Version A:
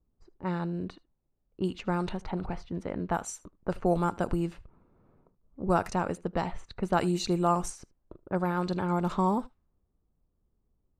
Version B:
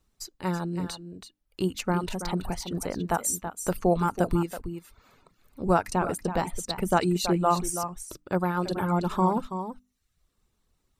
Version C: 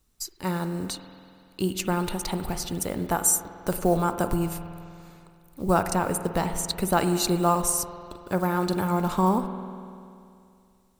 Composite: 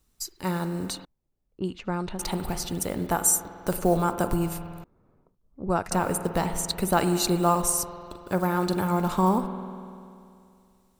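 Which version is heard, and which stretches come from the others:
C
1.05–2.19 s: from A
4.84–5.91 s: from A
not used: B

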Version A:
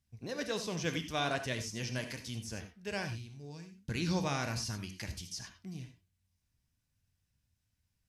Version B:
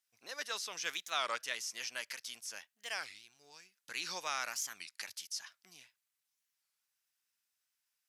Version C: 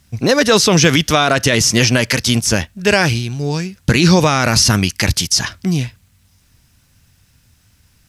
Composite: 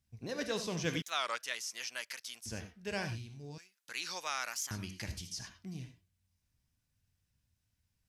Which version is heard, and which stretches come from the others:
A
1.02–2.46 s: from B
3.58–4.71 s: from B
not used: C

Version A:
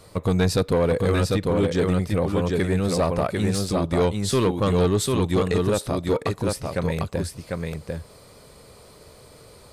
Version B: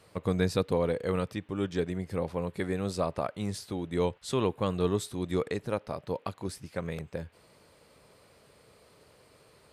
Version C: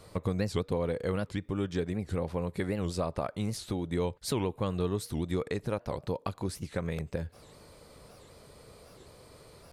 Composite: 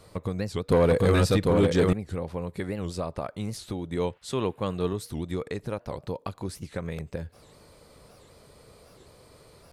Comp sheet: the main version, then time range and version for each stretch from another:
C
0.69–1.93 s: from A
3.96–4.93 s: from B

